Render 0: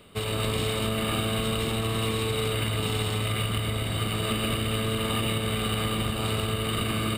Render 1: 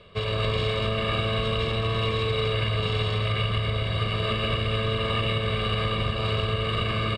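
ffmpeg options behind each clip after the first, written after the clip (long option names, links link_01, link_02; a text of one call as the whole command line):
ffmpeg -i in.wav -af "lowpass=frequency=5200:width=0.5412,lowpass=frequency=5200:width=1.3066,aecho=1:1:1.8:0.66" out.wav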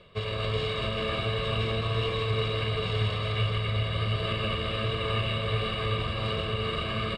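ffmpeg -i in.wav -af "areverse,acompressor=mode=upward:threshold=-30dB:ratio=2.5,areverse,flanger=delay=5.1:depth=8.5:regen=64:speed=1.4:shape=triangular,aecho=1:1:388:0.531" out.wav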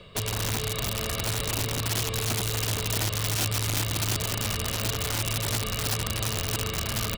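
ffmpeg -i in.wav -filter_complex "[0:a]acrossover=split=110|4200[link_01][link_02][link_03];[link_01]acompressor=threshold=-39dB:ratio=4[link_04];[link_02]acompressor=threshold=-38dB:ratio=4[link_05];[link_03]acompressor=threshold=-58dB:ratio=4[link_06];[link_04][link_05][link_06]amix=inputs=3:normalize=0,aeval=exprs='(mod(29.9*val(0)+1,2)-1)/29.9':channel_layout=same,bass=frequency=250:gain=4,treble=frequency=4000:gain=8,volume=4.5dB" out.wav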